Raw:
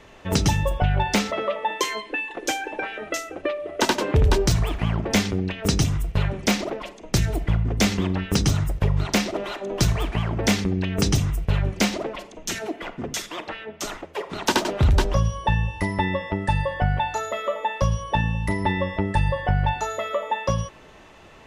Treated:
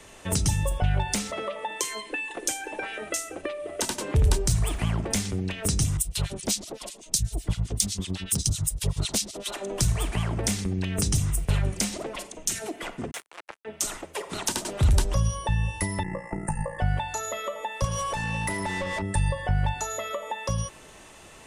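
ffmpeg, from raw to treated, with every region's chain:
-filter_complex "[0:a]asettb=1/sr,asplit=3[s0][s1][s2];[s0]atrim=end=5.974[s3];[s1]atrim=start=5.97:end=9.54,asetpts=PTS-STARTPTS,afade=t=in:d=0.004:c=qsin,afade=t=out:st=3.566:d=0.004:c=qsin,highshelf=f=2800:t=q:w=1.5:g=10.5,acrossover=split=1500[s4][s5];[s4]aeval=exprs='val(0)*(1-1/2+1/2*cos(2*PI*7.9*n/s))':c=same[s6];[s5]aeval=exprs='val(0)*(1-1/2-1/2*cos(2*PI*7.9*n/s))':c=same[s7];[s6][s7]amix=inputs=2:normalize=0,asoftclip=type=hard:threshold=0.447[s8];[s2]atrim=start=9.536[s9];[s3][s8]acrossfade=d=0.004:c1=hsin:c2=qsin[s10];[s10][s9]acrossfade=d=0.004:c1=qsin:c2=hsin,asettb=1/sr,asplit=3[s11][s12][s13];[s11]atrim=end=13.114[s14];[s12]atrim=start=13.11:end=13.65,asetpts=PTS-STARTPTS,afade=t=in:d=0.004:c=qsin,afade=t=out:st=0.536:d=0.004:c=qsin,acrusher=bits=3:mix=0:aa=0.5,acrossover=split=360 2600:gain=0.141 1 0.0794[s15][s16][s17];[s15][s16][s17]amix=inputs=3:normalize=0[s18];[s13]atrim=start=13.646[s19];[s14][s18]acrossfade=d=0.004:c1=hsin:c2=qsin[s20];[s20][s19]acrossfade=d=0.004:c1=qsin:c2=hsin,asettb=1/sr,asplit=3[s21][s22][s23];[s21]atrim=end=16.034[s24];[s22]atrim=start=16.03:end=16.79,asetpts=PTS-STARTPTS,afade=t=in:d=0.004:c=qsin,afade=t=out:st=0.756:d=0.004:c=qsin,tremolo=f=57:d=0.974,asuperstop=centerf=3700:order=4:qfactor=0.82,aecho=1:1:5.9:0.55,atrim=end_sample=33516[s25];[s23]atrim=start=16.786[s26];[s24][s25]acrossfade=d=0.004:c1=hsin:c2=qsin[s27];[s27][s26]acrossfade=d=0.004:c1=qsin:c2=hsin,asettb=1/sr,asplit=3[s28][s29][s30];[s28]atrim=end=17.844[s31];[s29]atrim=start=17.84:end=19.02,asetpts=PTS-STARTPTS,afade=t=in:d=0.004:c=qsin,afade=t=out:st=1.176:d=0.004:c=qsin,highshelf=f=8600:g=8.5,acompressor=threshold=0.0355:ratio=3:attack=3.2:release=140:knee=1:detection=peak,asplit=2[s32][s33];[s33]highpass=f=720:p=1,volume=22.4,asoftclip=type=tanh:threshold=0.266[s34];[s32][s34]amix=inputs=2:normalize=0,lowpass=f=1500:p=1,volume=0.501[s35];[s30]atrim=start=19.016[s36];[s31][s35]acrossfade=d=0.004:c1=hsin:c2=qsin[s37];[s37][s36]acrossfade=d=0.004:c1=qsin:c2=hsin,equalizer=f=9100:w=1.3:g=15,acrossover=split=160[s38][s39];[s39]acompressor=threshold=0.0447:ratio=6[s40];[s38][s40]amix=inputs=2:normalize=0,highshelf=f=4600:g=6.5,volume=0.794"

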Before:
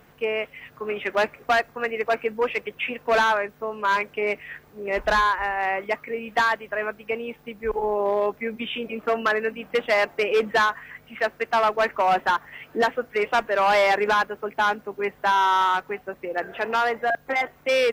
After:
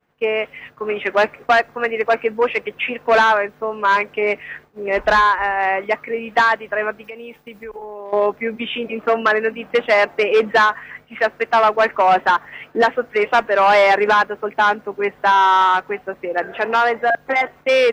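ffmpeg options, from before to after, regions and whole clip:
-filter_complex "[0:a]asettb=1/sr,asplit=3[s0][s1][s2];[s0]atrim=end=7.044[s3];[s1]atrim=start=7.04:end=8.13,asetpts=PTS-STARTPTS,afade=t=in:d=0.004:c=qsin,afade=t=out:st=1.086:d=0.004:c=qsin,highshelf=f=4800:g=11.5,acompressor=threshold=0.0141:ratio=5:attack=3.2:release=140:knee=1:detection=peak[s4];[s2]atrim=start=8.126[s5];[s3][s4]acrossfade=d=0.004:c1=hsin:c2=qsin[s6];[s6][s5]acrossfade=d=0.004:c1=qsin:c2=hsin,agate=range=0.0224:threshold=0.00794:ratio=3:detection=peak,lowpass=f=3600:p=1,lowshelf=f=150:g=-6.5,volume=2.24"

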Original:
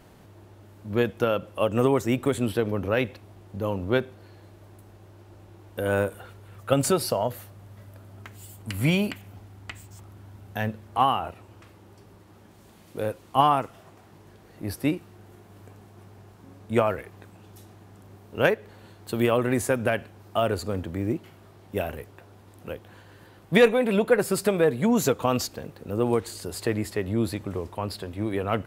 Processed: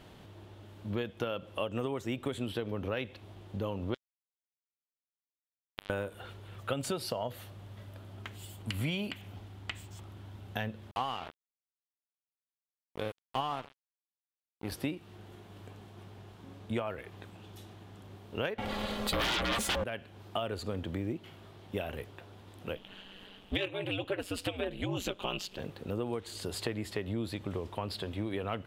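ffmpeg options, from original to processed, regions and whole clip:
-filter_complex "[0:a]asettb=1/sr,asplit=3[s0][s1][s2];[s0]atrim=end=3.944[s3];[s1]atrim=start=3.94:end=5.9,asetpts=PTS-STARTPTS,afade=t=in:d=0.004:c=qsin,afade=t=out:st=1.956:d=0.004:c=qsin,acompressor=threshold=0.0282:ratio=16:attack=3.2:release=140:knee=1:detection=peak,acrusher=bits=3:mix=0:aa=0.5[s4];[s2]atrim=start=5.896[s5];[s3][s4]acrossfade=d=0.004:c1=hsin:c2=qsin[s6];[s6][s5]acrossfade=d=0.004:c1=qsin:c2=hsin,asettb=1/sr,asplit=3[s7][s8][s9];[s7]atrim=end=10.914[s10];[s8]atrim=start=10.91:end=14.72,asetpts=PTS-STARTPTS,afade=t=in:d=0.004:c=qsin,afade=t=out:st=3.806:d=0.004:c=qsin,aecho=1:1:130|260:0.119|0.0285,atrim=end_sample=168021,aeval=exprs='sgn(val(0))*max(abs(val(0))-0.02,0)':c=same[s11];[s9]atrim=start=14.716[s12];[s10][s11]acrossfade=d=0.004:c1=hsin:c2=qsin[s13];[s13][s12]acrossfade=d=0.004:c1=qsin:c2=hsin,asettb=1/sr,asplit=3[s14][s15][s16];[s14]atrim=end=18.584[s17];[s15]atrim=start=18.58:end=19.84,asetpts=PTS-STARTPTS,afade=t=in:d=0.004:c=qsin,afade=t=out:st=1.256:d=0.004:c=qsin,aeval=exprs='val(0)*sin(2*PI*310*n/s)':c=same,aecho=1:1:3.6:0.54,atrim=end_sample=55566,aeval=exprs='0.335*sin(PI/2*8.91*val(0)/0.335)':c=same[s18];[s16]atrim=start=19.836[s19];[s17][s18]acrossfade=d=0.004:c1=hsin:c2=qsin[s20];[s20][s19]acrossfade=d=0.004:c1=qsin:c2=hsin,asettb=1/sr,asplit=3[s21][s22][s23];[s21]atrim=end=22.754[s24];[s22]atrim=start=22.75:end=25.59,asetpts=PTS-STARTPTS,afade=t=in:d=0.004:c=qsin,afade=t=out:st=2.836:d=0.004:c=qsin,equalizer=f=2900:t=o:w=0.48:g=11.5,aeval=exprs='val(0)*sin(2*PI*94*n/s)':c=same[s25];[s23]atrim=start=25.586[s26];[s24][s25]acrossfade=d=0.004:c1=hsin:c2=qsin[s27];[s27][s26]acrossfade=d=0.004:c1=qsin:c2=hsin,equalizer=f=3300:w=1.9:g=8.5,acompressor=threshold=0.0316:ratio=5,highshelf=f=6900:g=-6,volume=0.841"

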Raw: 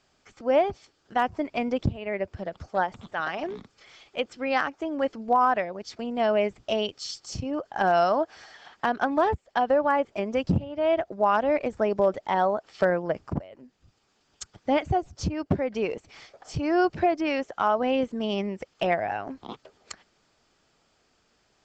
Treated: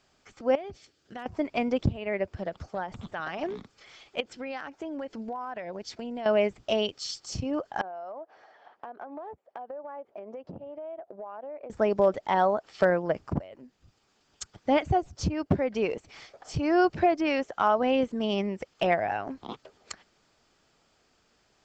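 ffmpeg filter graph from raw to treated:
-filter_complex "[0:a]asettb=1/sr,asplit=3[s0][s1][s2];[s0]atrim=end=0.554[s3];[s1]atrim=start=0.55:end=1.26,asetpts=PTS-STARTPTS,afade=t=in:d=0.004:c=qsin,afade=t=out:st=0.706:d=0.004:c=qsin,highpass=43,equalizer=f=950:w=1.4:g=-8.5,acompressor=threshold=0.0141:ratio=4:attack=3.2:release=140:knee=1:detection=peak[s4];[s2]atrim=start=1.256[s5];[s3][s4]acrossfade=d=0.004:c1=hsin:c2=qsin[s6];[s6][s5]acrossfade=d=0.004:c1=qsin:c2=hsin,asettb=1/sr,asplit=3[s7][s8][s9];[s7]atrim=end=2.744[s10];[s8]atrim=start=2.74:end=3.41,asetpts=PTS-STARTPTS,afade=t=in:d=0.004:c=qsin,afade=t=out:st=0.666:d=0.004:c=qsin,lowshelf=f=190:g=7.5,acompressor=threshold=0.0251:ratio=2.5:attack=3.2:release=140:knee=1:detection=peak[s11];[s9]atrim=start=3.406[s12];[s10][s11]acrossfade=d=0.004:c1=hsin:c2=qsin[s13];[s13][s12]acrossfade=d=0.004:c1=qsin:c2=hsin,asettb=1/sr,asplit=3[s14][s15][s16];[s14]atrim=end=4.204[s17];[s15]atrim=start=4.2:end=6.26,asetpts=PTS-STARTPTS,afade=t=in:d=0.004:c=qsin,afade=t=out:st=2.056:d=0.004:c=qsin,acompressor=threshold=0.0251:ratio=8:attack=3.2:release=140:knee=1:detection=peak,bandreject=f=1200:w=9.7[s18];[s16]atrim=start=6.256[s19];[s17][s18]acrossfade=d=0.004:c1=hsin:c2=qsin[s20];[s20][s19]acrossfade=d=0.004:c1=qsin:c2=hsin,asettb=1/sr,asplit=3[s21][s22][s23];[s21]atrim=end=7.814[s24];[s22]atrim=start=7.81:end=11.7,asetpts=PTS-STARTPTS,afade=t=in:d=0.004:c=qsin,afade=t=out:st=3.886:d=0.004:c=qsin,bandpass=f=620:t=q:w=1.3,acompressor=threshold=0.0141:ratio=8:attack=3.2:release=140:knee=1:detection=peak[s25];[s23]atrim=start=11.696[s26];[s24][s25]acrossfade=d=0.004:c1=hsin:c2=qsin[s27];[s27][s26]acrossfade=d=0.004:c1=qsin:c2=hsin"

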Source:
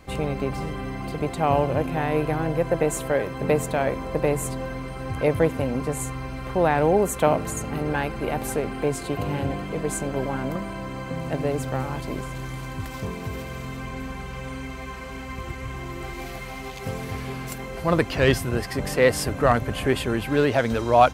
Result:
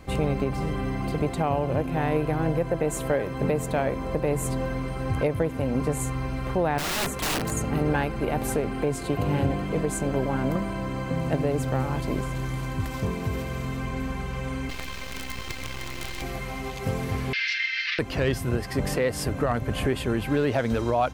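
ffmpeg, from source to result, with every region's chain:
-filter_complex "[0:a]asettb=1/sr,asplit=3[s0][s1][s2];[s0]atrim=end=6.784[s3];[s1]atrim=start=6.78:end=7.52,asetpts=PTS-STARTPTS,afade=t=in:d=0.004:c=qsin,afade=t=out:st=0.736:d=0.004:c=qsin,acrossover=split=4500[s4][s5];[s5]acompressor=threshold=0.0178:ratio=4:attack=1:release=60[s6];[s4][s6]amix=inputs=2:normalize=0,highpass=74,aeval=exprs='(mod(12.6*val(0)+1,2)-1)/12.6':c=same[s7];[s2]atrim=start=7.516[s8];[s3][s7]acrossfade=d=0.004:c1=hsin:c2=qsin[s9];[s9][s8]acrossfade=d=0.004:c1=qsin:c2=hsin,asettb=1/sr,asplit=3[s10][s11][s12];[s10]atrim=end=14.694[s13];[s11]atrim=start=14.69:end=16.22,asetpts=PTS-STARTPTS,afade=t=in:d=0.004:c=qsin,afade=t=out:st=1.526:d=0.004:c=qsin,equalizer=f=3700:t=o:w=2.2:g=14,acrossover=split=250|2000[s14][s15][s16];[s14]acompressor=threshold=0.0158:ratio=4[s17];[s15]acompressor=threshold=0.0141:ratio=4[s18];[s16]acompressor=threshold=0.02:ratio=4[s19];[s17][s18][s19]amix=inputs=3:normalize=0,acrusher=bits=5:dc=4:mix=0:aa=0.000001[s20];[s12]atrim=start=16.216[s21];[s13][s20]acrossfade=d=0.004:c1=hsin:c2=qsin[s22];[s22][s21]acrossfade=d=0.004:c1=qsin:c2=hsin,asettb=1/sr,asplit=3[s23][s24][s25];[s23]atrim=end=17.334[s26];[s24]atrim=start=17.33:end=17.99,asetpts=PTS-STARTPTS,afade=t=in:d=0.004:c=qsin,afade=t=out:st=0.656:d=0.004:c=qsin,asplit=2[s27][s28];[s28]highpass=f=720:p=1,volume=20,asoftclip=type=tanh:threshold=0.398[s29];[s27][s29]amix=inputs=2:normalize=0,lowpass=f=3100:p=1,volume=0.501,asuperpass=centerf=3100:order=12:qfactor=0.82[s30];[s25]atrim=start=17.986[s31];[s26][s30]acrossfade=d=0.004:c1=hsin:c2=qsin[s32];[s32][s31]acrossfade=d=0.004:c1=qsin:c2=hsin,lowshelf=f=480:g=4,alimiter=limit=0.2:level=0:latency=1:release=305"

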